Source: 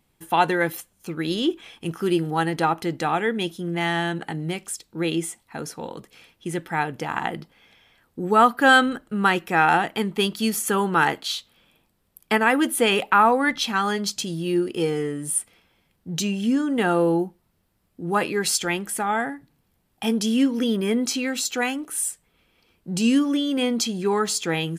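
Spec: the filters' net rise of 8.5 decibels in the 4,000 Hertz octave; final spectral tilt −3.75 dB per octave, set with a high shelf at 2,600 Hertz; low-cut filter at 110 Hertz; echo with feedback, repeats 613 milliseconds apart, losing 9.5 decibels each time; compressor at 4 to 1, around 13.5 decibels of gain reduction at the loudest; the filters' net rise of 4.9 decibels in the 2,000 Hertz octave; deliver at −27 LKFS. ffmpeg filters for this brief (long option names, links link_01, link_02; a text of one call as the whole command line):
ffmpeg -i in.wav -af "highpass=110,equalizer=frequency=2000:width_type=o:gain=3,highshelf=frequency=2600:gain=6.5,equalizer=frequency=4000:width_type=o:gain=4.5,acompressor=threshold=-24dB:ratio=4,aecho=1:1:613|1226|1839|2452:0.335|0.111|0.0365|0.012" out.wav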